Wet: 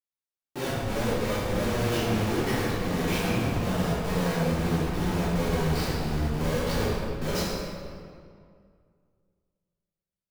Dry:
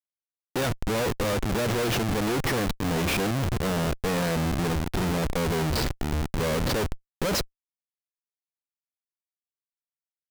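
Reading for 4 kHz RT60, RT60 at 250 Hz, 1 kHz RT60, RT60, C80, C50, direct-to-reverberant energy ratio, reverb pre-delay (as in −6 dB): 1.4 s, 2.5 s, 2.1 s, 2.2 s, −0.5 dB, −2.5 dB, −10.0 dB, 3 ms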